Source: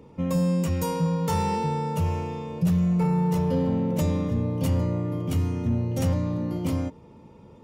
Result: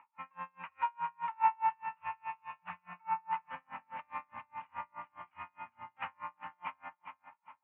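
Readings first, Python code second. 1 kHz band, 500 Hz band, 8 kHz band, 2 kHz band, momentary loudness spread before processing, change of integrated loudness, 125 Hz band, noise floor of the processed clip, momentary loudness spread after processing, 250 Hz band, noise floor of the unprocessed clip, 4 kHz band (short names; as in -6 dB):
-2.0 dB, -32.0 dB, under -40 dB, -2.5 dB, 5 LU, -14.0 dB, under -40 dB, -79 dBFS, 16 LU, -39.5 dB, -50 dBFS, under -15 dB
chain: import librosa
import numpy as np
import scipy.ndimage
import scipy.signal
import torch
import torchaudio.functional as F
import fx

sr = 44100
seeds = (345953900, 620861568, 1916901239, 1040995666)

y = scipy.signal.sosfilt(scipy.signal.ellip(3, 1.0, 40, [880.0, 2600.0], 'bandpass', fs=sr, output='sos'), x)
y = fx.air_absorb(y, sr, metres=390.0)
y = fx.echo_feedback(y, sr, ms=405, feedback_pct=33, wet_db=-9)
y = y * 10.0 ** (-37 * (0.5 - 0.5 * np.cos(2.0 * np.pi * 4.8 * np.arange(len(y)) / sr)) / 20.0)
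y = y * librosa.db_to_amplitude(8.5)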